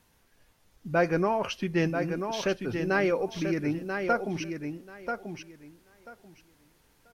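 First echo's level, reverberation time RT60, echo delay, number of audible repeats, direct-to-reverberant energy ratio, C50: -6.5 dB, none, 0.987 s, 2, none, none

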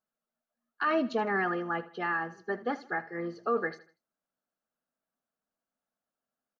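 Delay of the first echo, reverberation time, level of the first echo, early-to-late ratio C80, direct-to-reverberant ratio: 79 ms, none, -17.0 dB, none, none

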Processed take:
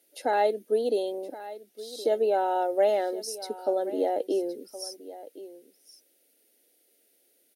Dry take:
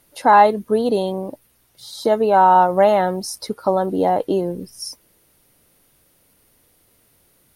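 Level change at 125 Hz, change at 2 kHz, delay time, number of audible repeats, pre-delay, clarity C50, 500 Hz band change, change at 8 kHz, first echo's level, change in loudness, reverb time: under -25 dB, -12.5 dB, 1.068 s, 1, none, none, -7.0 dB, -7.0 dB, -16.0 dB, -10.5 dB, none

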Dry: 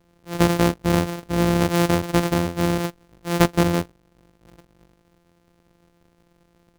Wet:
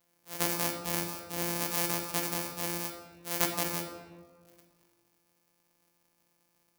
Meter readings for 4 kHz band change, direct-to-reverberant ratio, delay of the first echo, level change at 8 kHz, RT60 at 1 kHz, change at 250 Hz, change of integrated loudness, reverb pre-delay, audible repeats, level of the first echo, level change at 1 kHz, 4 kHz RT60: -6.5 dB, 2.0 dB, none, -1.0 dB, 1.4 s, -18.5 dB, -10.5 dB, 13 ms, none, none, -12.0 dB, 0.85 s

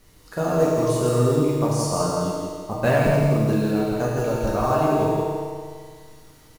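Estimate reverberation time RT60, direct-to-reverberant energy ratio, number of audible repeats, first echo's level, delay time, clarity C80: 1.9 s, -6.5 dB, 1, -4.0 dB, 0.165 s, -1.5 dB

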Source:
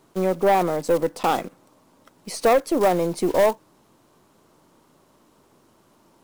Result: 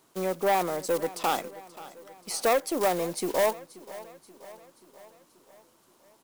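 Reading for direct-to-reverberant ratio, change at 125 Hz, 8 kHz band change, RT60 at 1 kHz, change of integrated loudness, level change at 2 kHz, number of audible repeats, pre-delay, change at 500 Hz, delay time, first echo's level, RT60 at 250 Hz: none, -10.0 dB, +1.0 dB, none, -6.0 dB, -3.0 dB, 4, none, -7.0 dB, 0.531 s, -18.0 dB, none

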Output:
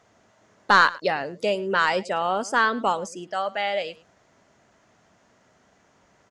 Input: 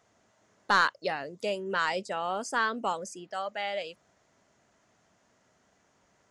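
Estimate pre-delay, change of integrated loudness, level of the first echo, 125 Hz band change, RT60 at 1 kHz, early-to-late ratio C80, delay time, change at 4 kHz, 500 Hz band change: none, +7.0 dB, -20.0 dB, +7.5 dB, none, none, 0.107 s, +6.0 dB, +7.5 dB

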